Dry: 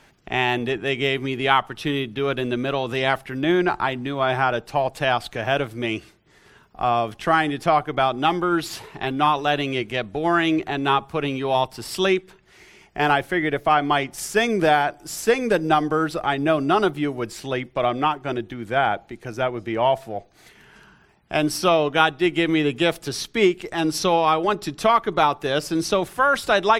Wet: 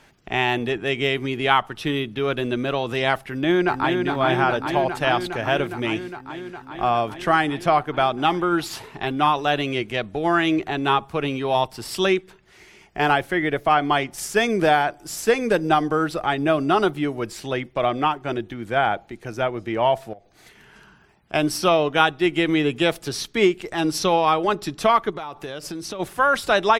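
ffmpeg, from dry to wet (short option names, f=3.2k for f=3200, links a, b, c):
-filter_complex "[0:a]asplit=2[a][b];[b]afade=t=in:st=3.27:d=0.01,afade=t=out:st=4.04:d=0.01,aecho=0:1:410|820|1230|1640|2050|2460|2870|3280|3690|4100|4510|4920:0.595662|0.47653|0.381224|0.304979|0.243983|0.195187|0.156149|0.124919|0.0999355|0.0799484|0.0639587|0.051167[c];[a][c]amix=inputs=2:normalize=0,asettb=1/sr,asplit=3[d][e][f];[d]atrim=end=20.134[g];[e]atrim=start=20.13:end=21.34,asetpts=PTS-STARTPTS,afade=t=in:d=0.004:c=qsin,afade=t=out:st=1.206:d=0.004:c=qsin,acompressor=threshold=-40dB:ratio=16:attack=3.2:release=140:knee=1:detection=peak[h];[f]atrim=start=21.336[i];[g][h]acrossfade=d=0.004:c1=hsin:c2=qsin[j];[j][i]acrossfade=d=0.004:c1=qsin:c2=hsin,asplit=3[k][l][m];[k]afade=t=out:st=25.1:d=0.02[n];[l]acompressor=threshold=-28dB:ratio=10:attack=3.2:release=140:knee=1:detection=peak,afade=t=in:st=25.1:d=0.02,afade=t=out:st=25.99:d=0.02[o];[m]afade=t=in:st=25.99:d=0.02[p];[n][o][p]amix=inputs=3:normalize=0"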